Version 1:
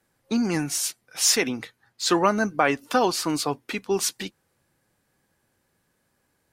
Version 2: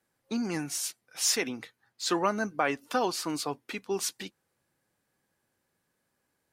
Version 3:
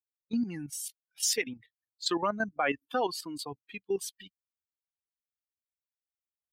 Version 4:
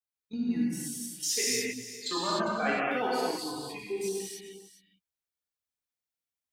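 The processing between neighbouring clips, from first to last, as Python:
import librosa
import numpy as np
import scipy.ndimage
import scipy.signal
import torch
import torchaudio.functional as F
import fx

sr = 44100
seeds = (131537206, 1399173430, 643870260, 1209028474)

y1 = fx.low_shelf(x, sr, hz=100.0, db=-7.5)
y1 = y1 * librosa.db_to_amplitude(-6.5)
y2 = fx.bin_expand(y1, sr, power=2.0)
y2 = fx.level_steps(y2, sr, step_db=11)
y2 = y2 * librosa.db_to_amplitude(6.0)
y3 = y2 + 10.0 ** (-14.5 / 20.0) * np.pad(y2, (int(403 * sr / 1000.0), 0))[:len(y2)]
y3 = fx.rev_gated(y3, sr, seeds[0], gate_ms=330, shape='flat', drr_db=-7.5)
y3 = y3 * librosa.db_to_amplitude(-6.5)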